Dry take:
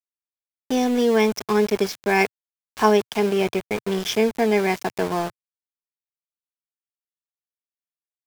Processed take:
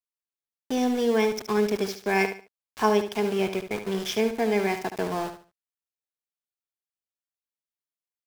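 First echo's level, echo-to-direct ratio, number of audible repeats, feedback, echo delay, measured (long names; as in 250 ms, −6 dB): −9.5 dB, −9.0 dB, 3, 27%, 72 ms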